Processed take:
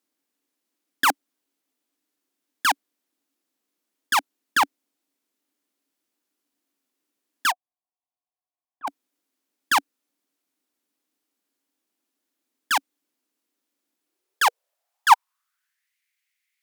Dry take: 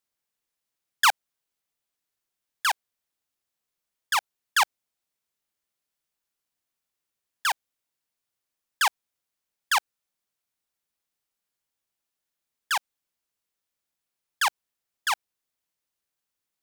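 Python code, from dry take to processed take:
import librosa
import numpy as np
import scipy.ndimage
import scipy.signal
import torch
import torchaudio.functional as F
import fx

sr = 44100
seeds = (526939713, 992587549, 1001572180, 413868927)

y = fx.low_shelf(x, sr, hz=330.0, db=3.5)
y = fx.cheby_harmonics(y, sr, harmonics=(5, 6, 8), levels_db=(-18, -7, -14), full_scale_db=-10.0)
y = fx.filter_sweep_highpass(y, sr, from_hz=280.0, to_hz=2100.0, start_s=13.96, end_s=15.95, q=5.8)
y = fx.formant_cascade(y, sr, vowel='a', at=(7.5, 8.87), fade=0.02)
y = y * librosa.db_to_amplitude(-1.0)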